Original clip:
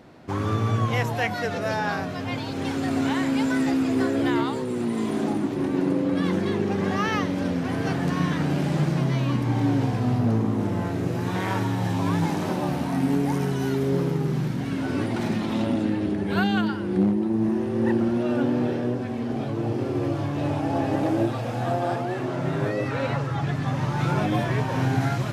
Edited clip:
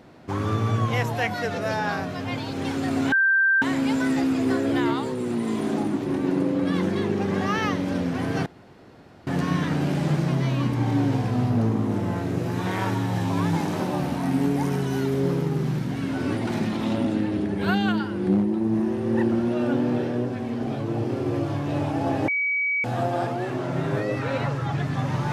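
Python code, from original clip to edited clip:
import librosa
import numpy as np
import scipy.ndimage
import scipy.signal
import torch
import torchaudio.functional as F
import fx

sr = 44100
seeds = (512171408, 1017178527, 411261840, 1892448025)

y = fx.edit(x, sr, fx.insert_tone(at_s=3.12, length_s=0.5, hz=1570.0, db=-16.0),
    fx.insert_room_tone(at_s=7.96, length_s=0.81),
    fx.bleep(start_s=20.97, length_s=0.56, hz=2270.0, db=-21.0), tone=tone)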